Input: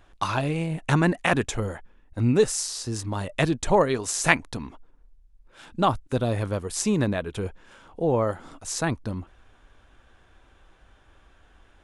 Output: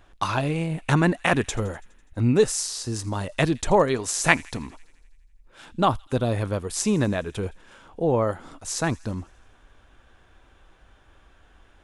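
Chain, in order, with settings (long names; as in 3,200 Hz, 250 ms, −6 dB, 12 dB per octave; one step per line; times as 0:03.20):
delay with a high-pass on its return 83 ms, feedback 67%, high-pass 2,400 Hz, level −21 dB
level +1 dB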